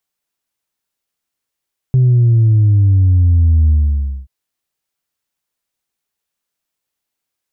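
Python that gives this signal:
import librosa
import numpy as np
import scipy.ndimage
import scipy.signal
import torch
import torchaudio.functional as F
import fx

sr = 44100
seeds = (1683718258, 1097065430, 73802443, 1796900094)

y = fx.sub_drop(sr, level_db=-7.5, start_hz=130.0, length_s=2.33, drive_db=0.5, fade_s=0.57, end_hz=65.0)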